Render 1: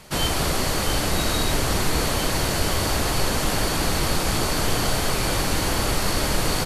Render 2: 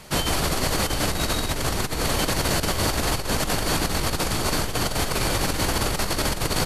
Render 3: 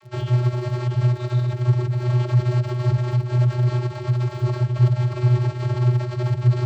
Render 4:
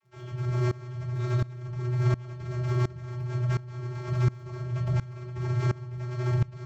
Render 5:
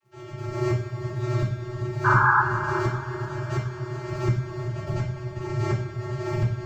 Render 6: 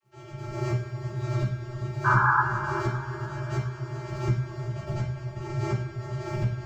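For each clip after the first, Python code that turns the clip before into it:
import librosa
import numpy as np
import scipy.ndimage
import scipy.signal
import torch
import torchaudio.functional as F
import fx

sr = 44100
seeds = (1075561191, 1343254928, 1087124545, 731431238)

y1 = fx.over_compress(x, sr, threshold_db=-23.0, ratio=-0.5)
y2 = fx.vocoder(y1, sr, bands=32, carrier='square', carrier_hz=123.0)
y2 = fx.bass_treble(y2, sr, bass_db=8, treble_db=-6)
y2 = fx.dmg_crackle(y2, sr, seeds[0], per_s=39.0, level_db=-41.0)
y3 = fx.over_compress(y2, sr, threshold_db=-19.0, ratio=-0.5)
y3 = fx.room_shoebox(y3, sr, seeds[1], volume_m3=220.0, walls='furnished', distance_m=1.7)
y3 = fx.tremolo_decay(y3, sr, direction='swelling', hz=1.4, depth_db=22)
y3 = F.gain(torch.from_numpy(y3), -3.0).numpy()
y4 = fx.spec_paint(y3, sr, seeds[2], shape='noise', start_s=2.04, length_s=0.38, low_hz=800.0, high_hz=1700.0, level_db=-24.0)
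y4 = y4 + 10.0 ** (-12.5 / 20.0) * np.pad(y4, (int(393 * sr / 1000.0), 0))[:len(y4)]
y4 = fx.rev_double_slope(y4, sr, seeds[3], early_s=0.45, late_s=4.8, knee_db=-18, drr_db=-4.0)
y5 = fx.doubler(y4, sr, ms=15.0, db=-5)
y5 = F.gain(torch.from_numpy(y5), -4.0).numpy()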